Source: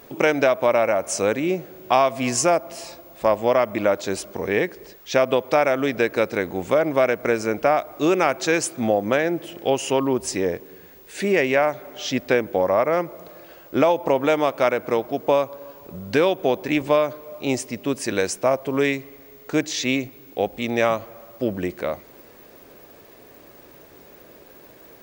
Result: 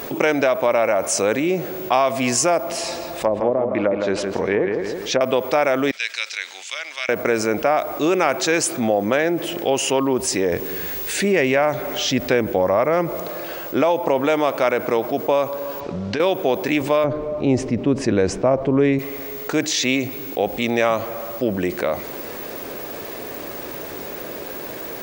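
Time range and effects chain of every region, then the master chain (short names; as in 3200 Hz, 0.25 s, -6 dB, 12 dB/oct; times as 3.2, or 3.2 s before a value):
2.69–5.21 treble ducked by the level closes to 470 Hz, closed at -14 dBFS + darkening echo 0.163 s, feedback 37%, low-pass 2900 Hz, level -8 dB
5.91–7.09 Butterworth band-pass 4400 Hz, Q 0.96 + three-band expander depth 70%
10.52–13.2 low shelf 150 Hz +11 dB + mismatched tape noise reduction encoder only
15.8–16.2 LPF 6100 Hz 24 dB/oct + compressor 3:1, threshold -30 dBFS
17.04–18.99 LPF 7100 Hz + tilt -4 dB/oct
whole clip: low shelf 150 Hz -6 dB; fast leveller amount 50%; gain -1.5 dB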